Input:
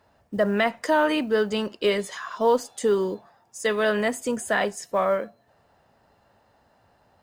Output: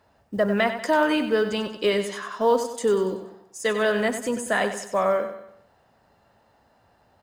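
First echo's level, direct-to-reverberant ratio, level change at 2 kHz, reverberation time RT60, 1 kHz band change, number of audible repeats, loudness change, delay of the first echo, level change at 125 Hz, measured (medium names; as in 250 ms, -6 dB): -10.0 dB, no reverb, +0.5 dB, no reverb, +0.5 dB, 4, +0.5 dB, 95 ms, no reading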